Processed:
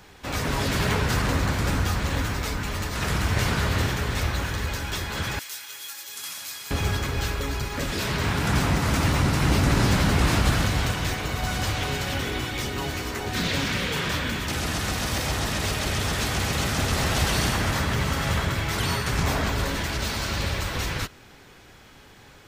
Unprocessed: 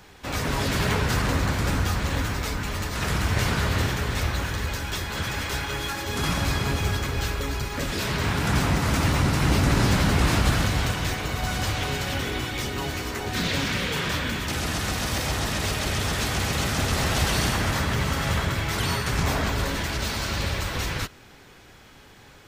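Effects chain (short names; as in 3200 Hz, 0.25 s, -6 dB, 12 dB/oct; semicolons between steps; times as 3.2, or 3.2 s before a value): 5.39–6.71 differentiator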